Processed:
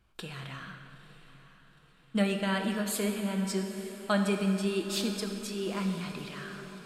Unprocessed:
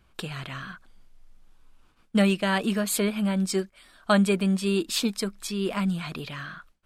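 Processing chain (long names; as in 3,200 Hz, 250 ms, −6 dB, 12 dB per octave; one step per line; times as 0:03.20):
feedback delay with all-pass diffusion 910 ms, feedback 51%, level −14.5 dB
on a send at −4 dB: convolution reverb RT60 2.5 s, pre-delay 3 ms
on the sum: level −7 dB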